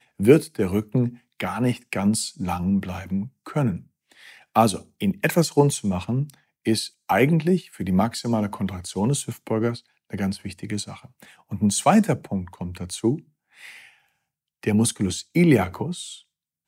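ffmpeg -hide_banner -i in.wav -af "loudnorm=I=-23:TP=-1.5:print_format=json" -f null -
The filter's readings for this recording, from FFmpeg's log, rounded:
"input_i" : "-23.4",
"input_tp" : "-2.6",
"input_lra" : "2.8",
"input_thresh" : "-34.2",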